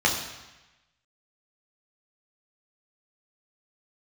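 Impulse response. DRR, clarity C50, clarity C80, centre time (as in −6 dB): −2.0 dB, 6.0 dB, 8.0 dB, 35 ms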